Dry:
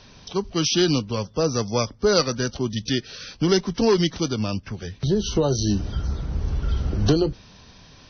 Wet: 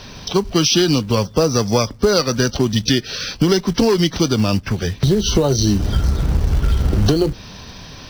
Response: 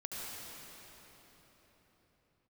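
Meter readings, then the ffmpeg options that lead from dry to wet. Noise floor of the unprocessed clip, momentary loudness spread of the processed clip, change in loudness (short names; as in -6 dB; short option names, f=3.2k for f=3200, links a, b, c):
-49 dBFS, 6 LU, +6.0 dB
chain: -filter_complex "[0:a]asplit=2[a][b];[b]acrusher=bits=3:mode=log:mix=0:aa=0.000001,volume=-4.5dB[c];[a][c]amix=inputs=2:normalize=0,acompressor=threshold=-20dB:ratio=6,volume=8dB"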